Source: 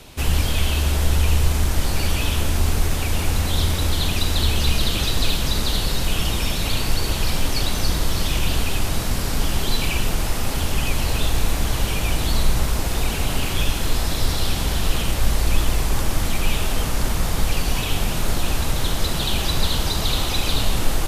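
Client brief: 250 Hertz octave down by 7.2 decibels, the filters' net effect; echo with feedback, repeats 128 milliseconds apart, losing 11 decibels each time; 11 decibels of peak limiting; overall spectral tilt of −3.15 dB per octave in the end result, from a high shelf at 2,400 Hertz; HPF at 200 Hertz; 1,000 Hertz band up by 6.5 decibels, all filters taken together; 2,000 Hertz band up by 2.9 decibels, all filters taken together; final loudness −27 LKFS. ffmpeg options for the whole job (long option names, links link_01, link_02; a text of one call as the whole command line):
ffmpeg -i in.wav -af "highpass=200,equalizer=frequency=250:width_type=o:gain=-7.5,equalizer=frequency=1000:width_type=o:gain=8.5,equalizer=frequency=2000:width_type=o:gain=4.5,highshelf=frequency=2400:gain=-5.5,alimiter=limit=-23dB:level=0:latency=1,aecho=1:1:128|256|384:0.282|0.0789|0.0221,volume=3.5dB" out.wav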